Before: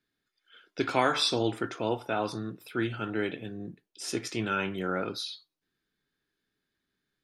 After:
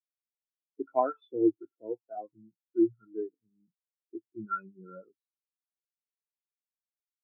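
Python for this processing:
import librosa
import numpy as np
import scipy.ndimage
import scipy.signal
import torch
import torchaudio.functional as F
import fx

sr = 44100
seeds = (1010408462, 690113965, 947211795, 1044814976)

y = scipy.signal.sosfilt(scipy.signal.butter(2, 2500.0, 'lowpass', fs=sr, output='sos'), x)
y = fx.spectral_expand(y, sr, expansion=4.0)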